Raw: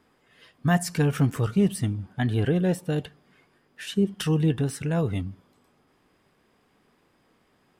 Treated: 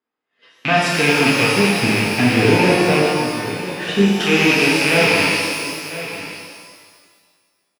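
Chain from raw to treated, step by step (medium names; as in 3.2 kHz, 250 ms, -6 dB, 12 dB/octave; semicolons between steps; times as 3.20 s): rattle on loud lows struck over -31 dBFS, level -16 dBFS; 1.75–4.16 s: tilt EQ -2.5 dB/octave; on a send: delay 997 ms -18.5 dB; on the sum: expander -44 dBFS; three-band isolator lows -18 dB, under 240 Hz, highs -18 dB, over 5.9 kHz; in parallel at +2 dB: compression, threshold -36 dBFS, peak gain reduction 17 dB; on the sum: loudness maximiser +12.5 dB; pitch-shifted reverb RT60 1.7 s, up +12 st, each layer -8 dB, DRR -5 dB; trim -8.5 dB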